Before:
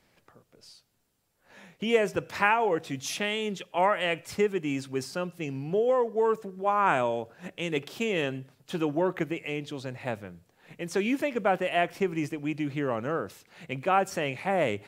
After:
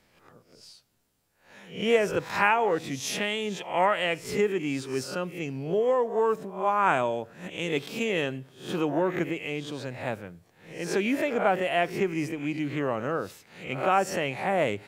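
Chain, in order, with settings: reverse spectral sustain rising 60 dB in 0.43 s

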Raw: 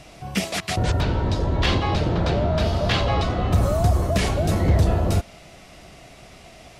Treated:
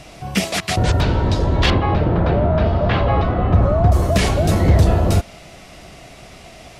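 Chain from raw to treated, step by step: 1.70–3.92 s: low-pass 1.9 kHz 12 dB/octave; trim +5 dB

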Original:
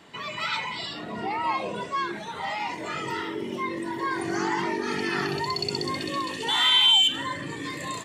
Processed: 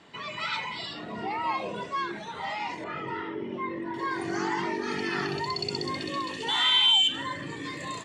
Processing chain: low-pass 7.3 kHz 12 dB/octave, from 2.84 s 2.2 kHz, from 3.94 s 7.6 kHz; trim -2.5 dB

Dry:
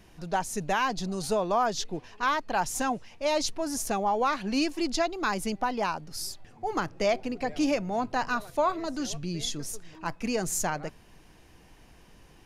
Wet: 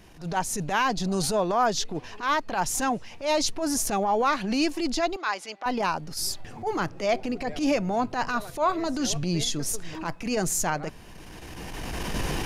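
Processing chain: recorder AGC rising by 17 dB/s; transient shaper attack -12 dB, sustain 0 dB; 5.16–5.66 s: band-pass 740–5000 Hz; trim +4 dB

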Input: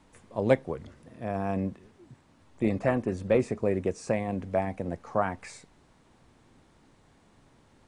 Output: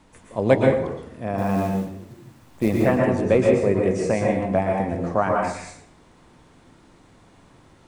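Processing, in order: 1.38–2.83 s: companded quantiser 6-bit; plate-style reverb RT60 0.69 s, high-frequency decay 0.7×, pre-delay 105 ms, DRR -0.5 dB; trim +5 dB

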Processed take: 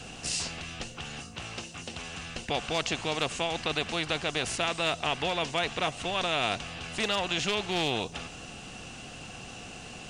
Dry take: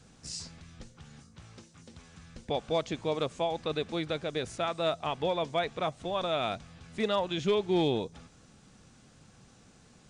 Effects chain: peaking EQ 2.8 kHz +13 dB 0.27 oct; small resonant body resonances 720/2700 Hz, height 10 dB, ringing for 45 ms; spectrum-flattening compressor 2:1

